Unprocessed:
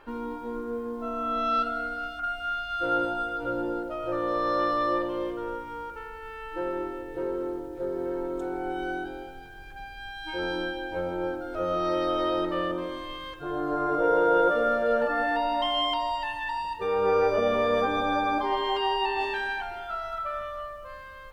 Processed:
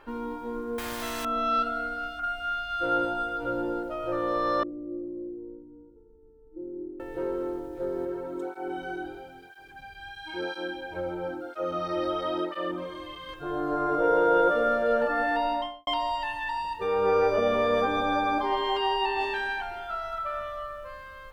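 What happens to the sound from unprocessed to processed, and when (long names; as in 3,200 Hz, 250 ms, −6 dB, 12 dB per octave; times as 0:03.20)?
0:00.78–0:01.25: every bin compressed towards the loudest bin 4 to 1
0:04.63–0:07.00: transistor ladder low-pass 360 Hz, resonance 60%
0:08.05–0:13.29: through-zero flanger with one copy inverted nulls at 1 Hz, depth 4.8 ms
0:15.47–0:15.87: fade out and dull
0:19.81–0:20.45: delay throw 440 ms, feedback 10%, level −14.5 dB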